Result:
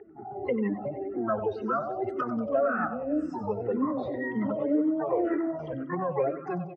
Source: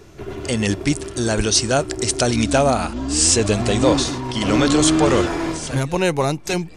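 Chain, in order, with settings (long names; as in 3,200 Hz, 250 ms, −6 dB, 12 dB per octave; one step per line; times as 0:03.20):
expanding power law on the bin magnitudes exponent 2.6
in parallel at −1.5 dB: brickwall limiter −16 dBFS, peak gain reduction 11 dB
on the sum: downward compressor 10 to 1, threshold −15 dBFS, peak gain reduction 7.5 dB
pitch-shifted copies added +12 semitones −9 dB
loudspeaker in its box 260–2,100 Hz, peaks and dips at 380 Hz −4 dB, 900 Hz −4 dB, 1,300 Hz +4 dB, 1,900 Hz +9 dB
on a send: repeating echo 94 ms, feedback 59%, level −11.5 dB
on the sum: frequency shifter mixed with the dry sound −1.9 Hz
level −4 dB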